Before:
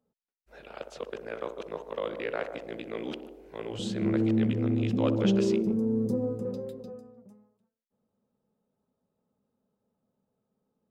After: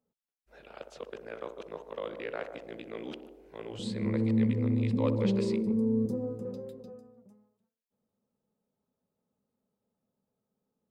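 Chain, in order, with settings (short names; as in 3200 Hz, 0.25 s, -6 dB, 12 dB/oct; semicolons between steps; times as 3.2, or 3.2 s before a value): 3.83–6.06 ripple EQ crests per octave 0.95, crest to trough 10 dB; gain -4.5 dB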